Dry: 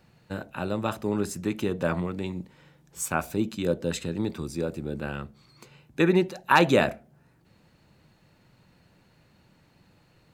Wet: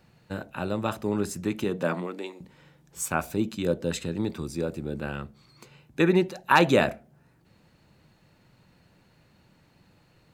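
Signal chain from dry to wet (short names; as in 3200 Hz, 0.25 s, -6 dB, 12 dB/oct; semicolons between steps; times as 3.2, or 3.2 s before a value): 1.64–2.4 HPF 100 Hz -> 420 Hz 24 dB/oct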